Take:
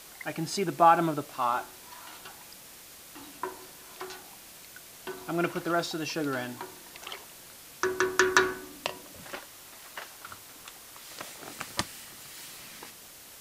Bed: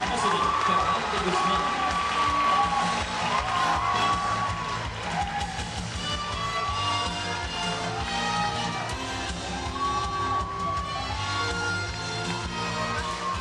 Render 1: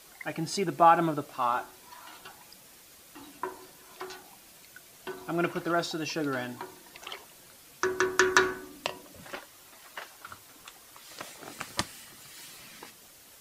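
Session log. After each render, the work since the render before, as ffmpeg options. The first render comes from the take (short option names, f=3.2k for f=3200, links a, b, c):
-af "afftdn=nr=6:nf=-50"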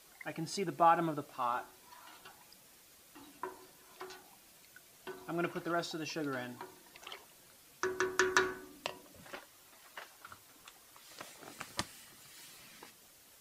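-af "volume=-7dB"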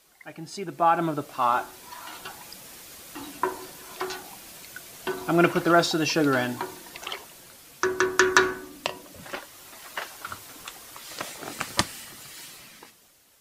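-af "dynaudnorm=f=130:g=17:m=16dB"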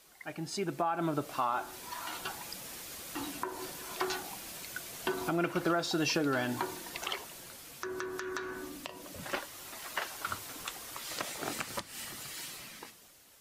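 -af "acompressor=threshold=-27dB:ratio=6,alimiter=limit=-19.5dB:level=0:latency=1:release=207"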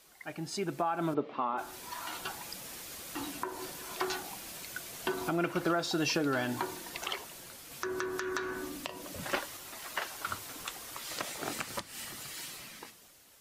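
-filter_complex "[0:a]asplit=3[a][b][c];[a]afade=t=out:st=1.13:d=0.02[d];[b]highpass=190,equalizer=f=230:t=q:w=4:g=9,equalizer=f=440:t=q:w=4:g=7,equalizer=f=690:t=q:w=4:g=-4,equalizer=f=1.5k:t=q:w=4:g=-8,equalizer=f=2.7k:t=q:w=4:g=-4,lowpass=f=3.1k:w=0.5412,lowpass=f=3.1k:w=1.3066,afade=t=in:st=1.13:d=0.02,afade=t=out:st=1.57:d=0.02[e];[c]afade=t=in:st=1.57:d=0.02[f];[d][e][f]amix=inputs=3:normalize=0,asplit=3[g][h][i];[g]atrim=end=7.712[j];[h]atrim=start=7.708:end=9.572,asetpts=PTS-STARTPTS,volume=3dB[k];[i]atrim=start=9.568[l];[j][k]acrossfade=d=0.004:c1=hsin:c2=hsin[m];[m][l]acrossfade=d=0.004:c1=hsin:c2=hsin"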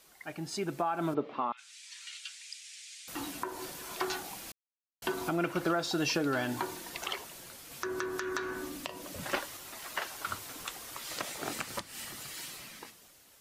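-filter_complex "[0:a]asettb=1/sr,asplit=3[a][b][c];[a]atrim=end=1.524[d];[b]atrim=start=1.52:end=3.08,asetpts=PTS-STARTPTS,afade=t=in:d=0.004:c=qsin,afade=t=out:st=1.556:d=0.004:c=qsin,asuperpass=centerf=4400:order=8:qfactor=0.66[e];[c]atrim=start=3.076[f];[d][e]acrossfade=d=0.004:c1=hsin:c2=qsin[g];[g][f]acrossfade=d=0.004:c1=qsin:c2=hsin,asplit=3[h][i][j];[h]atrim=end=4.52,asetpts=PTS-STARTPTS,afade=t=out:st=4.516:d=0.004:c=hsin[k];[i]atrim=start=4.52:end=5.02,asetpts=PTS-STARTPTS,volume=0[l];[j]atrim=start=5.02,asetpts=PTS-STARTPTS,afade=t=in:d=0.004:c=hsin[m];[k][l][m]concat=n=3:v=0:a=1"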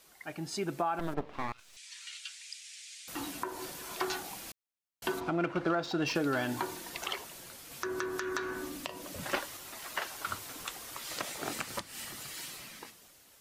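-filter_complex "[0:a]asettb=1/sr,asplit=3[a][b][c];[a]atrim=end=0.994[d];[b]atrim=start=0.99:end=1.77,asetpts=PTS-STARTPTS,afade=t=in:d=0.004:c=qsin,afade=t=out:st=0.776:d=0.004:c=qsin,aeval=exprs='max(val(0),0)':c=same[e];[c]atrim=start=1.766[f];[d][e]acrossfade=d=0.004:c1=hsin:c2=qsin[g];[g][f]acrossfade=d=0.004:c1=qsin:c2=hsin,asplit=3[h][i][j];[h]afade=t=out:st=5.19:d=0.02[k];[i]adynamicsmooth=sensitivity=3:basefreq=3.1k,afade=t=in:st=5.19:d=0.02,afade=t=out:st=6.14:d=0.02[l];[j]afade=t=in:st=6.14:d=0.02[m];[k][l][m]amix=inputs=3:normalize=0"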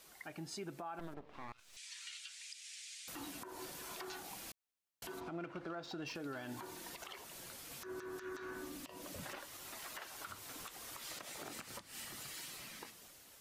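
-af "acompressor=threshold=-49dB:ratio=2,alimiter=level_in=11.5dB:limit=-24dB:level=0:latency=1:release=67,volume=-11.5dB"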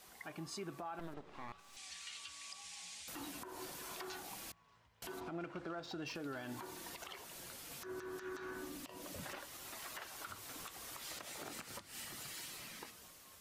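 -filter_complex "[1:a]volume=-39dB[a];[0:a][a]amix=inputs=2:normalize=0"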